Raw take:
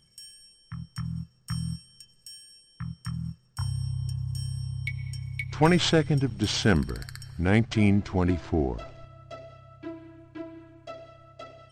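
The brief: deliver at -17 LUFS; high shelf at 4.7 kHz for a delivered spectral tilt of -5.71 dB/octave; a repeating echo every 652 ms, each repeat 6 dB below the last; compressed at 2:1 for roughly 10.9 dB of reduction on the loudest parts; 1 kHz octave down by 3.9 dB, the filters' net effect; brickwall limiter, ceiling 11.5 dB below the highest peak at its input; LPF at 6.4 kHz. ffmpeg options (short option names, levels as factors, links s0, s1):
-af "lowpass=6400,equalizer=f=1000:t=o:g=-5.5,highshelf=f=4700:g=4,acompressor=threshold=0.0141:ratio=2,alimiter=level_in=2.37:limit=0.0631:level=0:latency=1,volume=0.422,aecho=1:1:652|1304|1956|2608|3260|3912:0.501|0.251|0.125|0.0626|0.0313|0.0157,volume=15.8"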